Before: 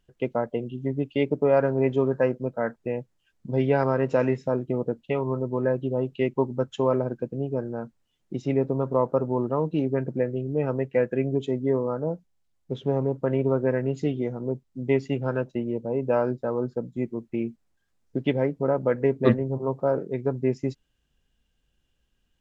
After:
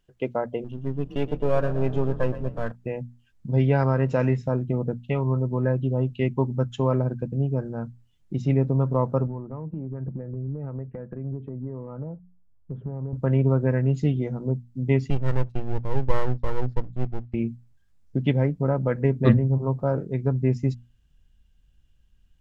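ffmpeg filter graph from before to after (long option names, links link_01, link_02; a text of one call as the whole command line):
ffmpeg -i in.wav -filter_complex "[0:a]asettb=1/sr,asplit=3[link_01][link_02][link_03];[link_01]atrim=end=0.644[link_04];[link_02]atrim=start=0.64:end=2.72,asetpts=PTS-STARTPTS,afade=type=in:duration=0.004:curve=qsin,afade=type=out:start_time=2.076:duration=0.004:curve=qsin,aeval=exprs='if(lt(val(0),0),0.447*val(0),val(0))':channel_layout=same,bandreject=frequency=2100:width=6.8,asplit=5[link_05][link_06][link_07][link_08][link_09];[link_06]adelay=120,afreqshift=30,volume=-14dB[link_10];[link_07]adelay=240,afreqshift=60,volume=-20.6dB[link_11];[link_08]adelay=360,afreqshift=90,volume=-27.1dB[link_12];[link_09]adelay=480,afreqshift=120,volume=-33.7dB[link_13];[link_05][link_10][link_11][link_12][link_13]amix=inputs=5:normalize=0,atrim=end_sample=91728[link_14];[link_03]atrim=start=2.716[link_15];[link_04][link_14]acrossfade=duration=0.004:curve1=hsin:curve2=qsin[link_16];[link_16][link_15]acrossfade=duration=0.004:curve1=qsin:curve2=hsin,asettb=1/sr,asplit=3[link_17][link_18][link_19];[link_17]atrim=end=9.274[link_20];[link_18]atrim=start=9.27:end=13.13,asetpts=PTS-STARTPTS,afade=type=in:duration=0.004:curve=qsin,afade=type=out:start_time=3.856:duration=0.004:curve=qsin,lowpass=frequency=1400:width=0.5412,lowpass=frequency=1400:width=1.3066,acompressor=threshold=-33dB:ratio=5:attack=3.2:release=140:knee=1:detection=peak[link_21];[link_19]atrim=start=13.126[link_22];[link_20][link_21]acrossfade=duration=0.004:curve1=hsin:curve2=qsin[link_23];[link_23][link_22]acrossfade=duration=0.004:curve1=qsin:curve2=hsin,asettb=1/sr,asplit=3[link_24][link_25][link_26];[link_24]atrim=end=15.104[link_27];[link_25]atrim=start=15.1:end=17.34,asetpts=PTS-STARTPTS,afade=type=in:duration=0.004:curve=qsin,afade=type=out:start_time=2.236:duration=0.004:curve=qsin,highpass=110,lowpass=3700,aecho=1:1:2.2:0.59,atrim=end_sample=98784,aeval=exprs='max(val(0),0)':channel_layout=same[link_28];[link_26]atrim=start=17.336[link_29];[link_27][link_28]acrossfade=duration=0.004:curve1=hsin:curve2=qsin[link_30];[link_30][link_29]acrossfade=duration=0.004:curve1=qsin:curve2=hsin,bandreject=frequency=60:width_type=h:width=6,bandreject=frequency=120:width_type=h:width=6,bandreject=frequency=180:width_type=h:width=6,bandreject=frequency=240:width_type=h:width=6,asubboost=boost=4.5:cutoff=170" out.wav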